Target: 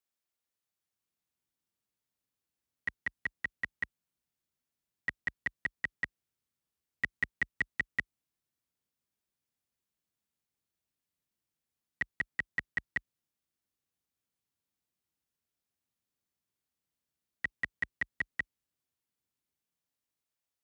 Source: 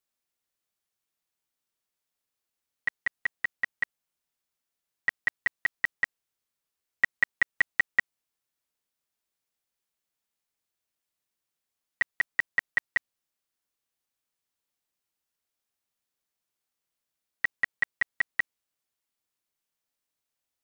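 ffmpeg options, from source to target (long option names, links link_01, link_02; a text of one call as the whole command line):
ffmpeg -i in.wav -filter_complex "[0:a]highpass=frequency=43:width=0.5412,highpass=frequency=43:width=1.3066,acrossover=split=310|2100[link_01][link_02][link_03];[link_01]dynaudnorm=framelen=210:gausssize=9:maxgain=10dB[link_04];[link_02]alimiter=limit=-23.5dB:level=0:latency=1[link_05];[link_04][link_05][link_03]amix=inputs=3:normalize=0,volume=-5dB" out.wav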